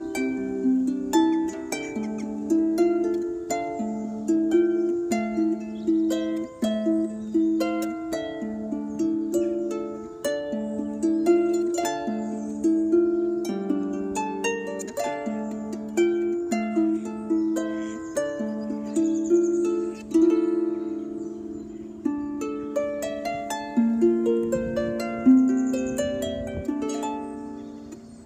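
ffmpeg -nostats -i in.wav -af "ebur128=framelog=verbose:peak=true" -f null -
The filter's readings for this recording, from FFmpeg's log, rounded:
Integrated loudness:
  I:         -25.5 LUFS
  Threshold: -35.6 LUFS
Loudness range:
  LRA:         3.9 LU
  Threshold: -45.5 LUFS
  LRA low:   -27.3 LUFS
  LRA high:  -23.5 LUFS
True peak:
  Peak:       -8.1 dBFS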